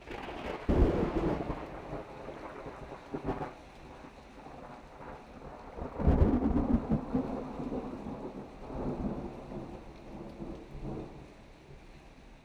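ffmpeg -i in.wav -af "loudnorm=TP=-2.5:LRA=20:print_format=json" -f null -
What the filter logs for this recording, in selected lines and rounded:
"input_i" : "-35.8",
"input_tp" : "-11.6",
"input_lra" : "13.8",
"input_thresh" : "-47.4",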